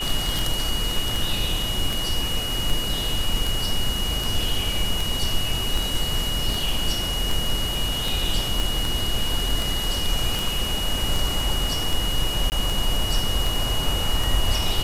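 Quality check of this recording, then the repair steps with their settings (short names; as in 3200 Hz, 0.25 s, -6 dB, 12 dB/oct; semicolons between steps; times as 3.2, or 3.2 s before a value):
tick 78 rpm
tone 2900 Hz -27 dBFS
8.6 pop
12.5–12.52 gap 19 ms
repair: de-click; notch 2900 Hz, Q 30; interpolate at 12.5, 19 ms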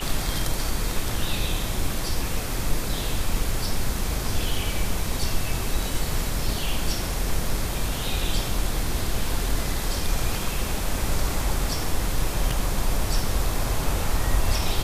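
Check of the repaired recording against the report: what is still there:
8.6 pop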